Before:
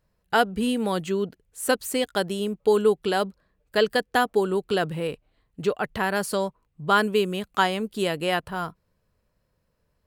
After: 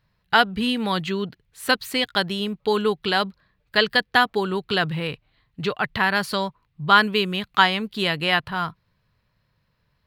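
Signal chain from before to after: ten-band EQ 125 Hz +9 dB, 500 Hz -4 dB, 1000 Hz +5 dB, 2000 Hz +7 dB, 4000 Hz +11 dB, 8000 Hz -8 dB; gain -1 dB

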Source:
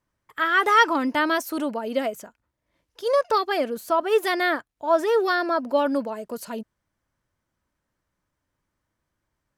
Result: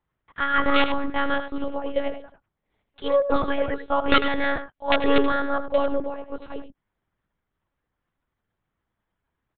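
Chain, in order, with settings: dynamic EQ 420 Hz, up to +6 dB, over -36 dBFS, Q 2.5; wrapped overs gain 8.5 dB; painted sound rise, 3.44–3.73, 230–2100 Hz -35 dBFS; echo 91 ms -10 dB; monotone LPC vocoder at 8 kHz 280 Hz; gain -1.5 dB

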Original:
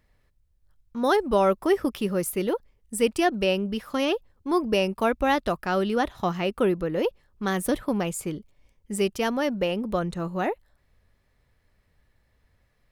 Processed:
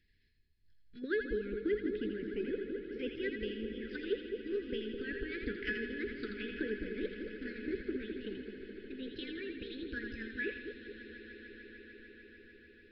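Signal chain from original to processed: gliding pitch shift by +6.5 st starting unshifted; Chebyshev band-stop 430–1600 Hz, order 4; treble ducked by the level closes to 1100 Hz, closed at -28 dBFS; high shelf 4200 Hz +9.5 dB; notches 60/120/180/240/300/360 Hz; harmonic-percussive split harmonic -12 dB; bell 130 Hz -3.5 dB 0.84 oct; resonator 840 Hz, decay 0.35 s, mix 80%; swelling echo 0.149 s, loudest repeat 5, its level -17 dB; downsampling 11025 Hz; split-band echo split 770 Hz, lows 0.211 s, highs 83 ms, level -5.5 dB; gain +12 dB

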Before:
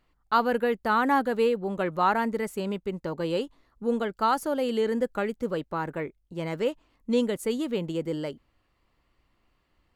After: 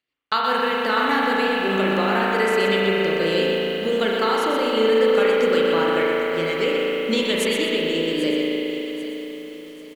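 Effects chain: weighting filter D; gate -57 dBFS, range -21 dB; low shelf 140 Hz -7.5 dB; compressor 4:1, threshold -29 dBFS, peak gain reduction 12 dB; rotary speaker horn 5 Hz, later 0.6 Hz, at 2.1; on a send: feedback echo 0.789 s, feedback 40%, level -15 dB; on the sum: spring tank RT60 3.9 s, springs 36 ms, chirp 50 ms, DRR -4 dB; lo-fi delay 0.124 s, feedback 35%, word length 9-bit, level -6.5 dB; gain +8.5 dB

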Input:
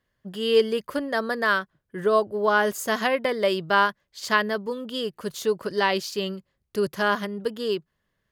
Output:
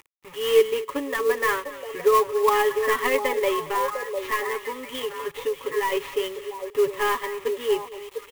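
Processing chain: CVSD 32 kbps; comb 7.2 ms, depth 67%; 3.67–5.92 compressor 4:1, threshold -24 dBFS, peak gain reduction 8.5 dB; delay with a stepping band-pass 0.701 s, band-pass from 590 Hz, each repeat 1.4 oct, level -4 dB; upward compressor, threshold -35 dBFS; bit-crush 7-bit; bell 1500 Hz +6.5 dB 1.2 oct; fixed phaser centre 1000 Hz, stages 8; echo 0.226 s -17.5 dB; clock jitter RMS 0.025 ms

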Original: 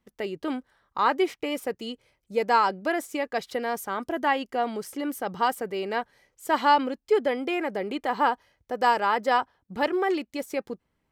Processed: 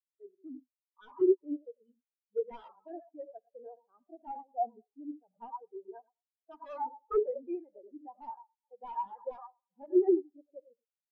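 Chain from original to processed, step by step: non-linear reverb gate 0.13 s rising, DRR 4.5 dB; vibrato 13 Hz 55 cents; on a send: band-limited delay 0.211 s, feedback 59%, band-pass 840 Hz, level -13 dB; on the sum: wrapped overs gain 15.5 dB; spectral expander 4:1

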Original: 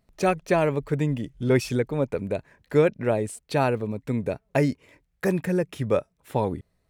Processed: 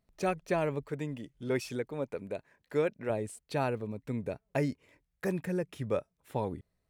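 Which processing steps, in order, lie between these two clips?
0.83–3.1 low shelf 150 Hz -11 dB; gain -8.5 dB

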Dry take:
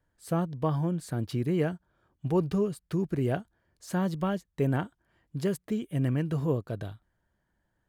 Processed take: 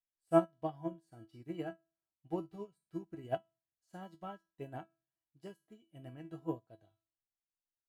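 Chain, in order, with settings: dynamic EQ 630 Hz, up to +4 dB, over -46 dBFS, Q 2.2; resonator 330 Hz, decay 0.37 s, harmonics all, mix 90%; small resonant body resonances 770/2900 Hz, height 13 dB, ringing for 65 ms; reverb, pre-delay 7 ms, DRR 18 dB; upward expander 2.5:1, over -52 dBFS; gain +11 dB

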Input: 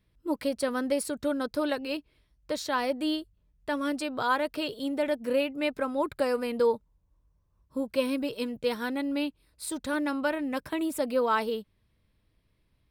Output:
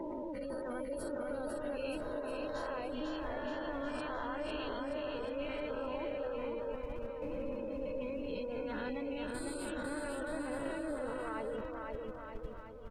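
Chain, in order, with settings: spectral swells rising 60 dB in 1.39 s; compressor 16:1, threshold -38 dBFS, peak gain reduction 19.5 dB; dynamic EQ 510 Hz, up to +4 dB, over -52 dBFS, Q 1.2; flange 0.95 Hz, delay 5.7 ms, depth 6.4 ms, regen +55%; spectral gate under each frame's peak -25 dB strong; added noise brown -57 dBFS; level quantiser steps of 18 dB; tone controls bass +1 dB, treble -7 dB; bouncing-ball echo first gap 0.5 s, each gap 0.85×, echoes 5; gain +13 dB

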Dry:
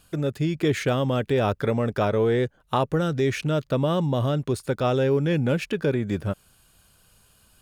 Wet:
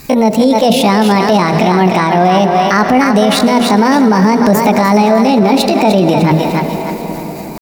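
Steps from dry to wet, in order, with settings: bell 130 Hz +4 dB 1.7 oct; notches 50/100/150/200/250/300/350/400/450 Hz; vocal rider 0.5 s; pitch shift +8 st; tremolo triangle 4.5 Hz, depth 50%; thinning echo 0.301 s, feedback 34%, high-pass 420 Hz, level -7 dB; on a send at -12.5 dB: reverb RT60 6.0 s, pre-delay 67 ms; on the sum: maximiser +22 dB; gain -1 dB

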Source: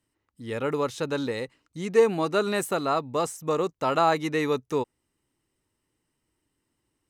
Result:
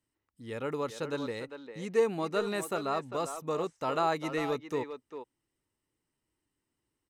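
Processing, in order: speakerphone echo 0.4 s, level -8 dB; gain -7 dB

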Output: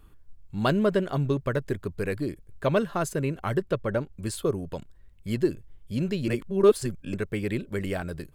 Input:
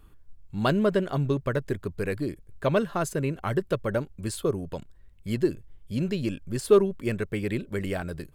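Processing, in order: 3.6–4.13 high shelf 6700 Hz -9.5 dB; 6.28–7.14 reverse

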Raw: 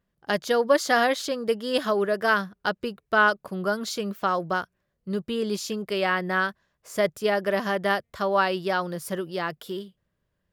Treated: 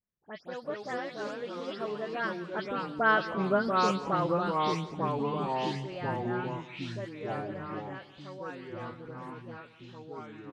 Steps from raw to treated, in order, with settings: spectral delay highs late, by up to 0.146 s; Doppler pass-by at 3.61, 16 m/s, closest 7.2 m; echoes that change speed 0.118 s, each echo -3 st, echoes 3; air absorption 110 m; on a send: feedback echo 0.173 s, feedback 42%, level -16.5 dB

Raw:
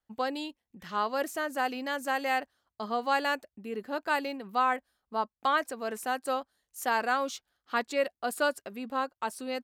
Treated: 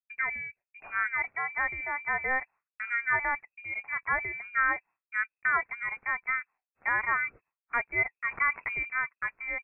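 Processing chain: expander -49 dBFS; inverted band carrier 2600 Hz; 8.31–8.83 fast leveller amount 50%

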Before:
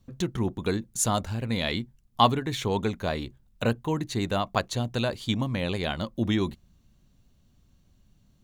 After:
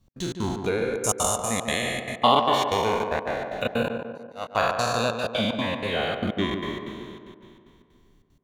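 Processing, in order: spectral trails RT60 2.51 s; spectral noise reduction 7 dB; 0.69–1.09 high shelf 3800 Hz -7.5 dB; 3.88–4.5 gate -20 dBFS, range -35 dB; in parallel at 0 dB: compressor, threshold -31 dBFS, peak gain reduction 17.5 dB; 5.13–6.22 on the sum: dispersion lows, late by 0.105 s, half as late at 2200 Hz; step gate "x.xx.xx.xxxx." 188 bpm -60 dB; on a send: tape echo 0.144 s, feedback 61%, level -5 dB, low-pass 1500 Hz; on the sum: gain -2.5 dB

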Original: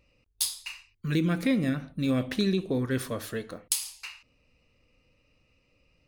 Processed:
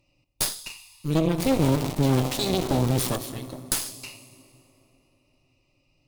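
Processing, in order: 1.38–3.16 zero-crossing step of -28 dBFS; in parallel at -2 dB: limiter -18.5 dBFS, peak gain reduction 9 dB; on the sum: fixed phaser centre 310 Hz, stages 8; plate-style reverb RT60 3.6 s, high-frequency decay 0.55×, DRR 9.5 dB; added harmonics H 6 -18 dB, 8 -10 dB, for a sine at -6 dBFS; gain -2 dB

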